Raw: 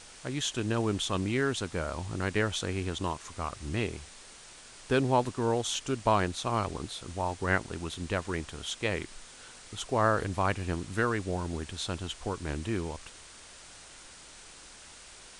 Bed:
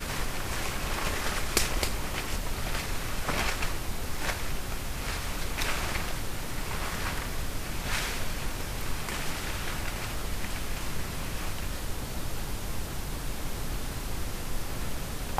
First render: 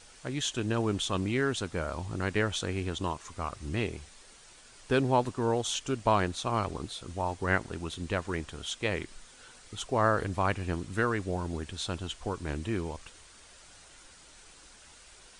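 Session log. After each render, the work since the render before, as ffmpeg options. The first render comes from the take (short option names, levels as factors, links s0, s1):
-af "afftdn=nr=6:nf=-51"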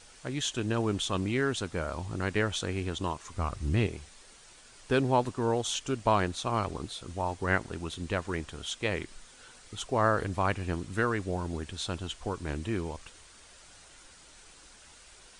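-filter_complex "[0:a]asettb=1/sr,asplit=3[s0][s1][s2];[s0]atrim=end=3.344[s3];[s1]atrim=start=3.34:end=3.87,asetpts=PTS-STARTPTS,afade=t=in:d=0.004:c=qsin,afade=t=out:st=0.526:d=0.004:c=qsin,lowshelf=f=190:g=9.5[s4];[s2]atrim=start=3.866[s5];[s3][s4]acrossfade=d=0.004:c1=hsin:c2=qsin[s6];[s6][s5]acrossfade=d=0.004:c1=qsin:c2=hsin"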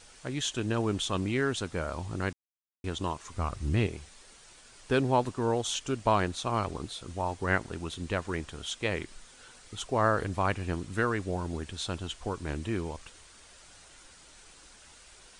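-filter_complex "[0:a]asplit=3[s0][s1][s2];[s0]atrim=end=2.33,asetpts=PTS-STARTPTS,afade=t=out:st=2.326:d=0.004:c=hsin[s3];[s1]atrim=start=2.33:end=2.84,asetpts=PTS-STARTPTS,volume=0[s4];[s2]atrim=start=2.84,asetpts=PTS-STARTPTS,afade=t=in:d=0.004:c=hsin[s5];[s3][s4][s5]concat=n=3:v=0:a=1"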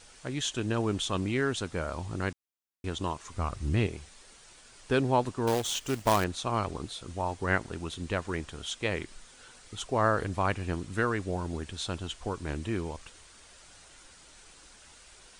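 -filter_complex "[0:a]asettb=1/sr,asplit=3[s0][s1][s2];[s0]atrim=end=5.474[s3];[s1]atrim=start=5.47:end=6.24,asetpts=PTS-STARTPTS,afade=t=in:d=0.004:c=qsin,afade=t=out:st=0.766:d=0.004:c=qsin,acrusher=bits=2:mode=log:mix=0:aa=0.000001[s4];[s2]atrim=start=6.236[s5];[s3][s4]acrossfade=d=0.004:c1=hsin:c2=qsin[s6];[s6][s5]acrossfade=d=0.004:c1=qsin:c2=hsin"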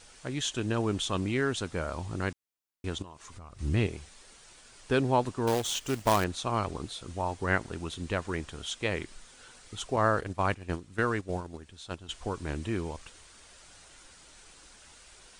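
-filter_complex "[0:a]asettb=1/sr,asplit=3[s0][s1][s2];[s0]atrim=end=3.024[s3];[s1]atrim=start=3.02:end=3.59,asetpts=PTS-STARTPTS,afade=t=in:d=0.004:c=qsin,afade=t=out:st=0.566:d=0.004:c=qsin,acompressor=threshold=0.00631:ratio=5:attack=3.2:release=140:knee=1:detection=peak[s4];[s2]atrim=start=3.586[s5];[s3][s4]acrossfade=d=0.004:c1=hsin:c2=qsin[s6];[s6][s5]acrossfade=d=0.004:c1=qsin:c2=hsin,asettb=1/sr,asplit=3[s7][s8][s9];[s7]atrim=end=9.964[s10];[s8]atrim=start=9.96:end=12.09,asetpts=PTS-STARTPTS,afade=t=in:d=0.004:c=qsin,afade=t=out:st=2.126:d=0.004:c=qsin,agate=range=0.282:threshold=0.0224:ratio=16:release=100:detection=peak[s11];[s9]atrim=start=12.086[s12];[s10][s11]acrossfade=d=0.004:c1=hsin:c2=qsin[s13];[s13][s12]acrossfade=d=0.004:c1=qsin:c2=hsin"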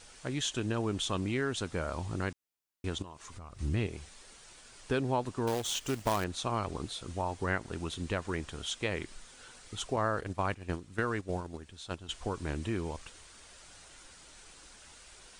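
-af "acompressor=threshold=0.0316:ratio=2"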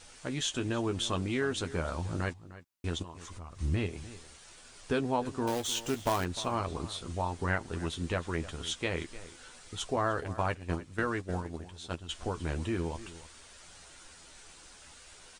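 -filter_complex "[0:a]asplit=2[s0][s1];[s1]adelay=12,volume=0.447[s2];[s0][s2]amix=inputs=2:normalize=0,asplit=2[s3][s4];[s4]adelay=303.2,volume=0.158,highshelf=f=4000:g=-6.82[s5];[s3][s5]amix=inputs=2:normalize=0"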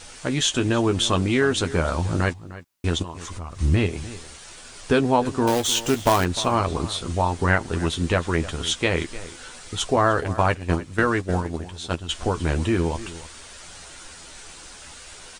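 -af "volume=3.55"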